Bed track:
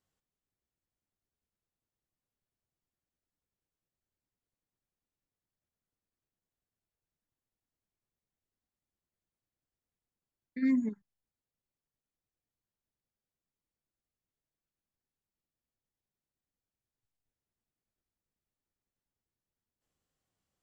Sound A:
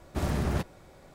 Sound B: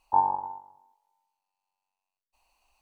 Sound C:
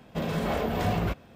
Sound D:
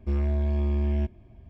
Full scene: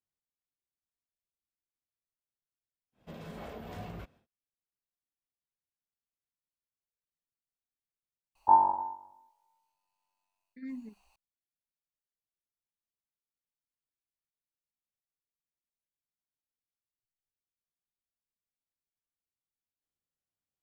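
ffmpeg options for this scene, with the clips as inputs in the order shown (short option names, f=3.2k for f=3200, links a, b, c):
-filter_complex "[0:a]volume=-13.5dB[a];[2:a]asplit=2[b][c];[c]adelay=18,volume=-4.5dB[d];[b][d]amix=inputs=2:normalize=0[e];[3:a]atrim=end=1.35,asetpts=PTS-STARTPTS,volume=-16dB,afade=t=in:d=0.1,afade=t=out:st=1.25:d=0.1,adelay=2920[f];[e]atrim=end=2.81,asetpts=PTS-STARTPTS,volume=-0.5dB,afade=t=in:d=0.004:c=hsin,afade=t=out:st=2.806:d=0.004:c=hsin,adelay=8350[g];[a][f][g]amix=inputs=3:normalize=0"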